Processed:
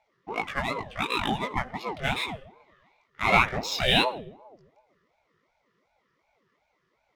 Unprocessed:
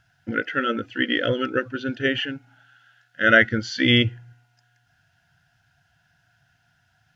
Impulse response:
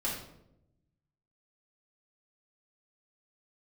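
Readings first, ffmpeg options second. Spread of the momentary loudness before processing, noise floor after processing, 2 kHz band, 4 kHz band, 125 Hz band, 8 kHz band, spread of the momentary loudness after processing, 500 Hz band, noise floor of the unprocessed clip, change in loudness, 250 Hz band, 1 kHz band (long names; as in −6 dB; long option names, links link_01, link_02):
12 LU, −74 dBFS, −7.5 dB, −3.0 dB, −6.5 dB, can't be measured, 13 LU, −6.5 dB, −66 dBFS, −4.5 dB, −10.0 dB, +3.0 dB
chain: -filter_complex "[0:a]bass=frequency=250:gain=-2,treble=frequency=4000:gain=12,adynamicsmooth=sensitivity=6.5:basefreq=2600,flanger=delay=17.5:depth=6.6:speed=2.2,asplit=2[link_01][link_02];[1:a]atrim=start_sample=2205,lowshelf=frequency=330:gain=8.5,adelay=50[link_03];[link_02][link_03]afir=irnorm=-1:irlink=0,volume=-23.5dB[link_04];[link_01][link_04]amix=inputs=2:normalize=0,aeval=exprs='val(0)*sin(2*PI*510*n/s+510*0.5/2.7*sin(2*PI*2.7*n/s))':channel_layout=same"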